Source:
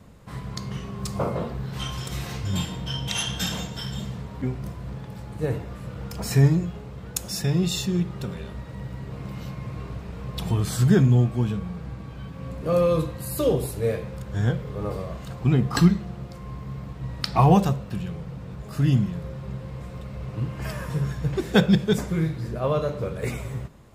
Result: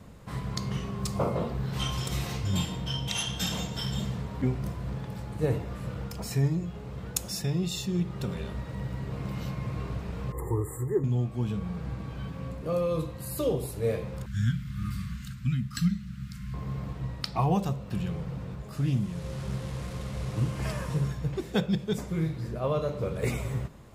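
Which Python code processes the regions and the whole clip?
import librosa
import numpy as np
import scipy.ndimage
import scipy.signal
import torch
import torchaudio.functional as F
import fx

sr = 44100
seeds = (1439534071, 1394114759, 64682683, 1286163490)

y = fx.chain(x, sr, fx.brickwall_bandstop(low_hz=2100.0, high_hz=6800.0),
    fx.peak_eq(hz=390.0, db=6.0, octaves=1.0),
    fx.fixed_phaser(hz=990.0, stages=8), at=(10.32, 11.04))
y = fx.chain(y, sr, fx.ellip_bandstop(low_hz=230.0, high_hz=1400.0, order=3, stop_db=40),
    fx.high_shelf(hz=5400.0, db=3.5), at=(14.26, 16.54))
y = fx.chain(y, sr, fx.delta_mod(bps=64000, step_db=-40.0),
    fx.doppler_dist(depth_ms=0.15), at=(18.76, 21.08))
y = fx.dynamic_eq(y, sr, hz=1600.0, q=3.6, threshold_db=-50.0, ratio=4.0, max_db=-4)
y = fx.rider(y, sr, range_db=5, speed_s=0.5)
y = y * librosa.db_to_amplitude(-4.5)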